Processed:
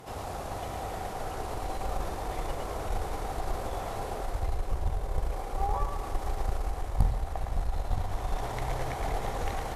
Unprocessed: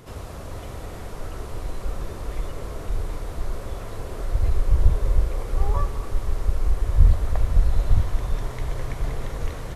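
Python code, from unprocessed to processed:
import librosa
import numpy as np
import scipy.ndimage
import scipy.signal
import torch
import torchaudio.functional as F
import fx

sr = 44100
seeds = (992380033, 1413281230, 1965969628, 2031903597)

y = fx.low_shelf(x, sr, hz=220.0, db=-6.0)
y = y + 10.0 ** (-5.5 / 20.0) * np.pad(y, (int(111 * sr / 1000.0), 0))[:len(y)]
y = fx.cheby_harmonics(y, sr, harmonics=(3, 5, 8), levels_db=(-15, -33, -32), full_scale_db=-7.0)
y = fx.rider(y, sr, range_db=4, speed_s=0.5)
y = fx.peak_eq(y, sr, hz=780.0, db=12.5, octaves=0.34)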